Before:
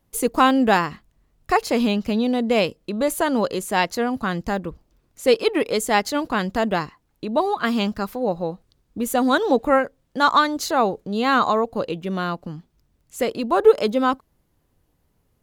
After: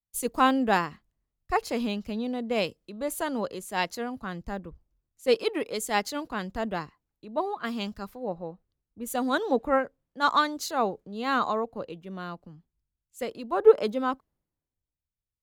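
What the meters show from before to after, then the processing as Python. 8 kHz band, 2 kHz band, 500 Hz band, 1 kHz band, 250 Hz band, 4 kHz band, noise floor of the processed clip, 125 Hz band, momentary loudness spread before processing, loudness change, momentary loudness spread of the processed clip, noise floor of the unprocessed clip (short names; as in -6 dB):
-6.5 dB, -7.5 dB, -6.5 dB, -7.0 dB, -9.0 dB, -7.5 dB, under -85 dBFS, -10.0 dB, 11 LU, -7.0 dB, 15 LU, -67 dBFS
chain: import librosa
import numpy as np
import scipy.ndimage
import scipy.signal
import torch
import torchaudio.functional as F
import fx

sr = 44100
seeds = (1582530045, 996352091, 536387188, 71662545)

y = fx.band_widen(x, sr, depth_pct=70)
y = y * librosa.db_to_amplitude(-8.5)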